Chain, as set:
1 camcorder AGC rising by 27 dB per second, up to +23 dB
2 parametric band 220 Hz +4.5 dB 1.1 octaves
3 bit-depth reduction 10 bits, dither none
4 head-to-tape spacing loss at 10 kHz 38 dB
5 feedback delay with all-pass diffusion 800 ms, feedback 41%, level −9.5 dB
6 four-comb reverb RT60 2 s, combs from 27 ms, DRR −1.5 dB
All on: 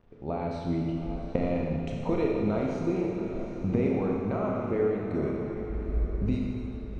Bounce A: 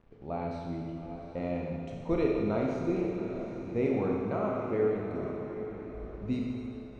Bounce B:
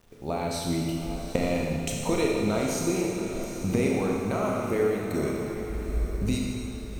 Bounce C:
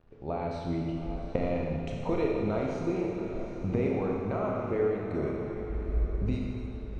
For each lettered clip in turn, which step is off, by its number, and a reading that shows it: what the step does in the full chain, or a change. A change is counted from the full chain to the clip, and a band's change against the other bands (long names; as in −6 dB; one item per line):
1, change in momentary loudness spread +4 LU
4, 2 kHz band +6.5 dB
2, 250 Hz band −2.5 dB